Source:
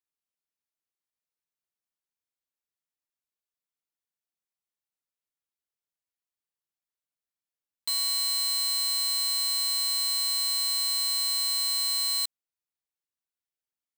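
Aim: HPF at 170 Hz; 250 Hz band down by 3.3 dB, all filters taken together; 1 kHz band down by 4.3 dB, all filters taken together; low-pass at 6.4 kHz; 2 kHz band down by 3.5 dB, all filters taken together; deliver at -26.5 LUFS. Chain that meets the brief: high-pass 170 Hz; low-pass 6.4 kHz; peaking EQ 250 Hz -4 dB; peaking EQ 1 kHz -4 dB; peaking EQ 2 kHz -3 dB; trim +0.5 dB

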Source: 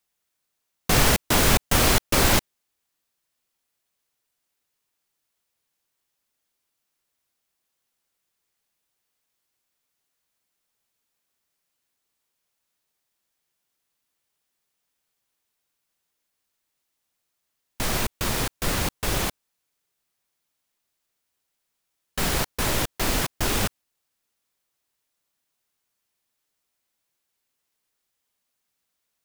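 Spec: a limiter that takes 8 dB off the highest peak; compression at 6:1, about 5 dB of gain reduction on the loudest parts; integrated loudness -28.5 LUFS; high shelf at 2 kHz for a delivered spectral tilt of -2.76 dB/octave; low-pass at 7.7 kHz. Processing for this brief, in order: low-pass 7.7 kHz; treble shelf 2 kHz +3.5 dB; compression 6:1, threshold -19 dBFS; peak limiter -17 dBFS

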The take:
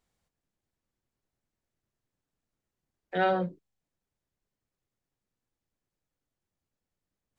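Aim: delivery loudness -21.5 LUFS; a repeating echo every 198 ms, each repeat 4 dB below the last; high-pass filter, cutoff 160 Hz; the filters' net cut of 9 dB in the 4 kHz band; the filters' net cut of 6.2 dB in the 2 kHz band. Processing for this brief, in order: high-pass 160 Hz; peaking EQ 2 kHz -8 dB; peaking EQ 4 kHz -8.5 dB; feedback delay 198 ms, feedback 63%, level -4 dB; trim +10 dB

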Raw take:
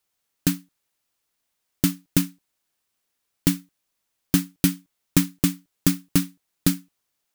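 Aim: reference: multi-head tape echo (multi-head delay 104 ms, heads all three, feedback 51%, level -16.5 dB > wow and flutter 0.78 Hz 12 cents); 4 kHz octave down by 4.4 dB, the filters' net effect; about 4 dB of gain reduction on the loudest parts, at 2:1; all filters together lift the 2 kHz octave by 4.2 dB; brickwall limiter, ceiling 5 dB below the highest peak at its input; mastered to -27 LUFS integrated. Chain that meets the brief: peaking EQ 2 kHz +7.5 dB; peaking EQ 4 kHz -8.5 dB; compression 2:1, threshold -21 dBFS; peak limiter -9 dBFS; multi-head delay 104 ms, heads all three, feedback 51%, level -16.5 dB; wow and flutter 0.78 Hz 12 cents; trim +4.5 dB

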